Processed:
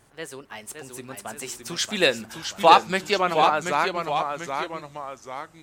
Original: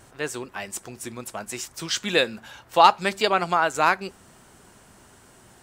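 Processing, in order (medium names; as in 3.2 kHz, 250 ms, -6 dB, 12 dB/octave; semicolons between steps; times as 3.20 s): Doppler pass-by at 2.33 s, 28 m/s, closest 29 m; ever faster or slower copies 556 ms, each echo -1 st, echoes 2, each echo -6 dB; trim +1 dB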